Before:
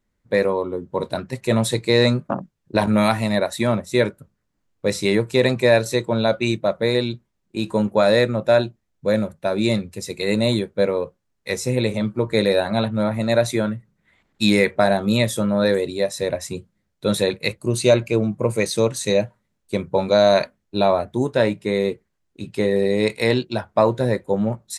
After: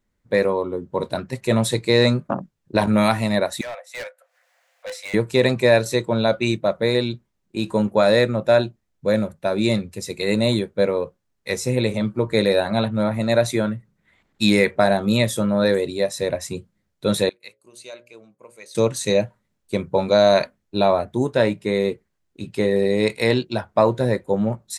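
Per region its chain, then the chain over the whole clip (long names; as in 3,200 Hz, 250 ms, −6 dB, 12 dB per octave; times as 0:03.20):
0:03.61–0:05.14: Chebyshev high-pass with heavy ripple 500 Hz, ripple 9 dB + upward compression, threshold −43 dBFS + gain into a clipping stage and back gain 28.5 dB
0:17.29–0:18.75: low-pass filter 1,100 Hz 6 dB per octave + first difference + mains-hum notches 60/120/180/240/300/360/420/480/540/600 Hz
whole clip: no processing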